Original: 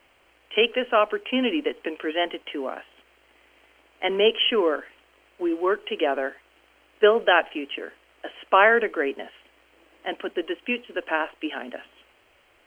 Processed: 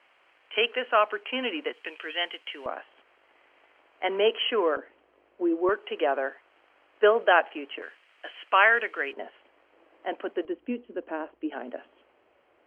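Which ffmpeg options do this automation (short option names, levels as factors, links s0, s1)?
-af "asetnsamples=n=441:p=0,asendcmd='1.73 bandpass f 2900;2.66 bandpass f 960;4.77 bandpass f 430;5.69 bandpass f 930;7.82 bandpass f 2200;9.13 bandpass f 680;10.45 bandpass f 200;11.52 bandpass f 480',bandpass=f=1400:t=q:w=0.65:csg=0"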